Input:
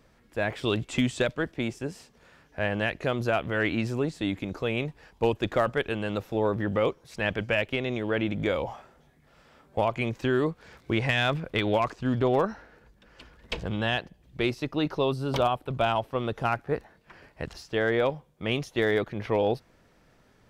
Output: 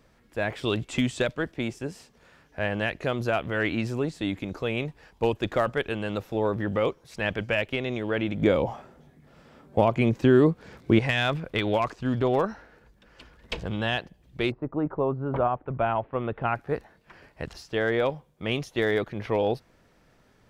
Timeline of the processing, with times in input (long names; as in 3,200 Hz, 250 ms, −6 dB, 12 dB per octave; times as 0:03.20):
0:08.42–0:10.99: parametric band 210 Hz +9 dB 2.9 octaves
0:14.50–0:16.54: low-pass filter 1,200 Hz → 2,800 Hz 24 dB per octave